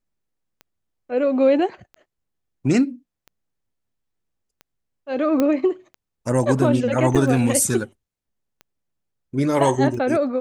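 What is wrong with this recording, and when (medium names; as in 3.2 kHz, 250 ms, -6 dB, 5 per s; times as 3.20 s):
tick 45 rpm -26 dBFS
5.40 s: pop -8 dBFS
7.15–7.16 s: dropout 6.3 ms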